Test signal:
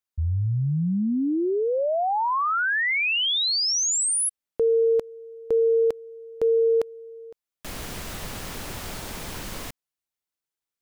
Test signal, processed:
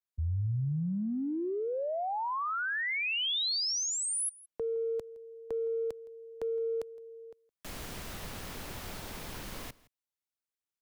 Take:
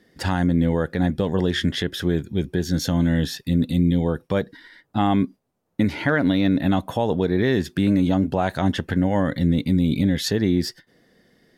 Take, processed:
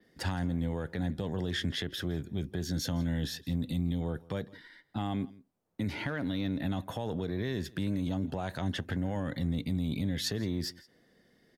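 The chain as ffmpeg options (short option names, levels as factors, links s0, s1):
-filter_complex "[0:a]adynamicequalizer=threshold=0.00501:dfrequency=7700:dqfactor=1.4:tfrequency=7700:tqfactor=1.4:attack=5:release=100:ratio=0.375:range=1.5:mode=cutabove:tftype=bell,acrossover=split=120|3900[s0][s1][s2];[s1]acompressor=threshold=0.0631:ratio=6:attack=1.4:release=61:knee=2.83:detection=peak[s3];[s0][s3][s2]amix=inputs=3:normalize=0,asplit=2[s4][s5];[s5]aecho=0:1:165:0.0794[s6];[s4][s6]amix=inputs=2:normalize=0,volume=0.447"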